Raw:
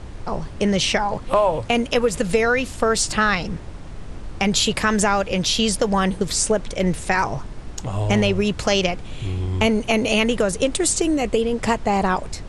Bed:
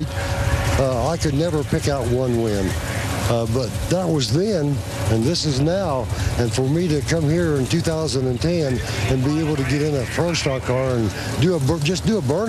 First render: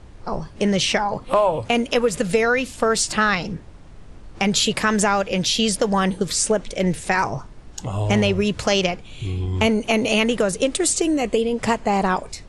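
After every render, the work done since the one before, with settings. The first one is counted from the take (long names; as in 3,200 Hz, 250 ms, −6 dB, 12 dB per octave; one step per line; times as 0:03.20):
noise reduction from a noise print 8 dB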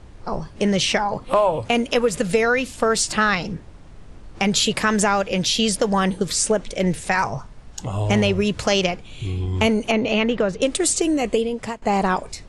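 0:07.07–0:07.79: parametric band 330 Hz −7.5 dB 0.53 octaves
0:09.91–0:10.62: high-frequency loss of the air 180 metres
0:11.36–0:11.82: fade out, to −17 dB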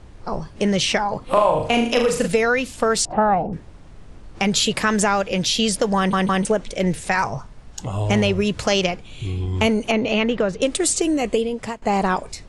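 0:01.23–0:02.28: flutter between parallel walls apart 6.7 metres, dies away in 0.5 s
0:03.05–0:03.53: low-pass with resonance 750 Hz, resonance Q 5.8
0:05.97: stutter in place 0.16 s, 3 plays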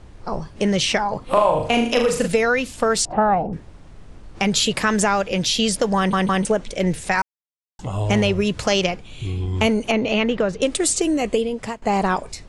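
0:07.22–0:07.79: silence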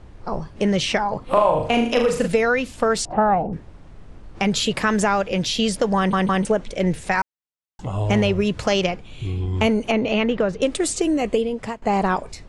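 high-shelf EQ 3,900 Hz −7 dB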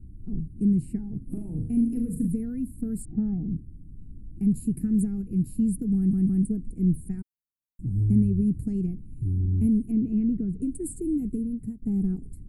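inverse Chebyshev band-stop filter 530–6,300 Hz, stop band 40 dB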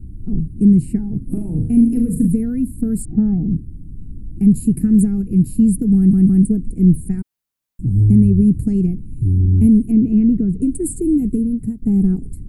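level +11 dB
brickwall limiter −3 dBFS, peak gain reduction 2.5 dB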